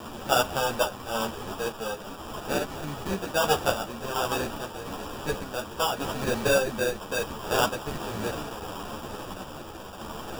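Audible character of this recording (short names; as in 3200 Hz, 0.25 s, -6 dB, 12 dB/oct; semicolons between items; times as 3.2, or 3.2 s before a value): a quantiser's noise floor 6-bit, dither triangular; random-step tremolo; aliases and images of a low sample rate 2100 Hz, jitter 0%; a shimmering, thickened sound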